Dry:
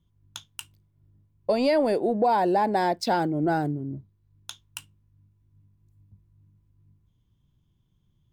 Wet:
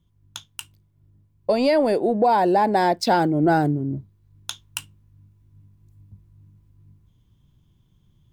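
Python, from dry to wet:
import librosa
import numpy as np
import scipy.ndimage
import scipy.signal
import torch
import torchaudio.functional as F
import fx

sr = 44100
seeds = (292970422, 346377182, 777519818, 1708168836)

y = fx.rider(x, sr, range_db=10, speed_s=2.0)
y = y * librosa.db_to_amplitude(5.0)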